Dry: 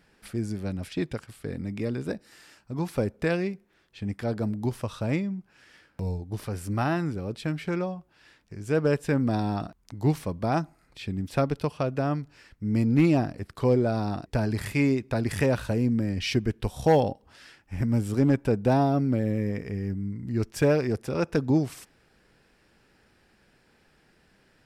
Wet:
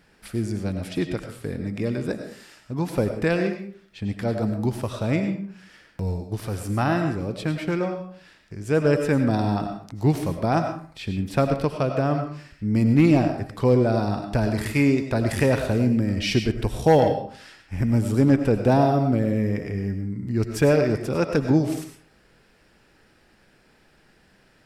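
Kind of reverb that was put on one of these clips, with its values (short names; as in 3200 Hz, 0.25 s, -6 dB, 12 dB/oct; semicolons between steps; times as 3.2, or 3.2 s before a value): digital reverb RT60 0.48 s, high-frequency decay 0.7×, pre-delay 60 ms, DRR 6 dB; gain +3.5 dB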